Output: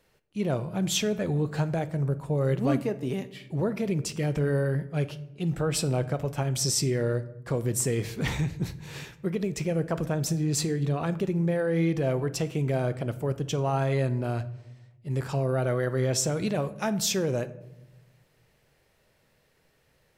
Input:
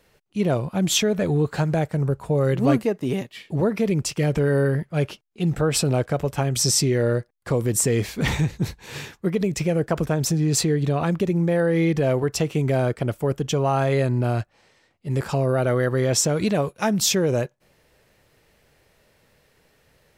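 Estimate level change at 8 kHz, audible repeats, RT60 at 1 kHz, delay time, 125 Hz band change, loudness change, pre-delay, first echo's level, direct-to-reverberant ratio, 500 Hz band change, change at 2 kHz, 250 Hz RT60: -6.5 dB, no echo, 0.75 s, no echo, -5.0 dB, -5.5 dB, 5 ms, no echo, 12.0 dB, -6.0 dB, -6.5 dB, 1.3 s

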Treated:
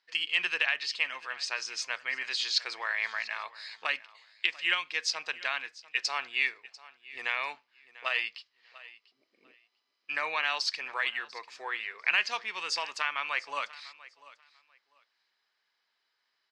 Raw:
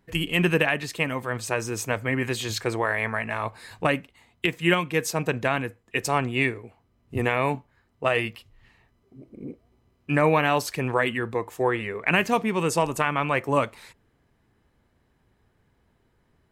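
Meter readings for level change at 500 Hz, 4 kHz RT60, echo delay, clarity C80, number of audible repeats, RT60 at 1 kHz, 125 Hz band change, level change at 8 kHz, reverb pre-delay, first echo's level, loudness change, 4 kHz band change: -20.5 dB, no reverb, 694 ms, no reverb, 2, no reverb, under -40 dB, -6.5 dB, no reverb, -19.5 dB, -6.0 dB, +1.5 dB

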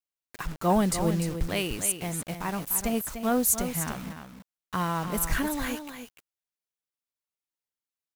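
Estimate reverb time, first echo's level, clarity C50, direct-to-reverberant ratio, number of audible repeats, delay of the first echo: no reverb, -9.0 dB, no reverb, no reverb, 1, 297 ms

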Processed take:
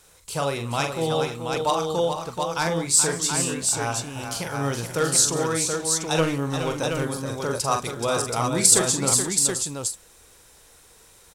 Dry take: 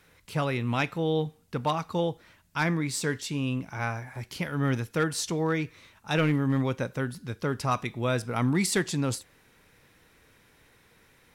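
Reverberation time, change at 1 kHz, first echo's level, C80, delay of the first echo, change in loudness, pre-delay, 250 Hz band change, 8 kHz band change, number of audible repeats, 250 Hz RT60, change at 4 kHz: no reverb, +6.0 dB, -6.5 dB, no reverb, 43 ms, +6.5 dB, no reverb, 0.0 dB, +17.5 dB, 6, no reverb, +9.5 dB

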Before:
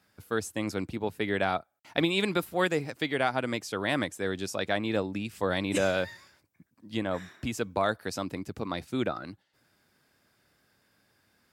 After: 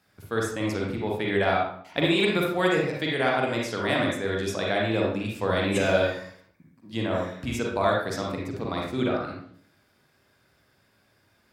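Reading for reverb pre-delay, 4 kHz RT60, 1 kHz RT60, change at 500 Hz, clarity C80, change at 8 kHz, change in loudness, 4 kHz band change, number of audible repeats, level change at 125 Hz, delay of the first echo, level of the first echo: 38 ms, 0.45 s, 0.55 s, +5.0 dB, 5.5 dB, +0.5 dB, +4.5 dB, +4.0 dB, no echo, +6.0 dB, no echo, no echo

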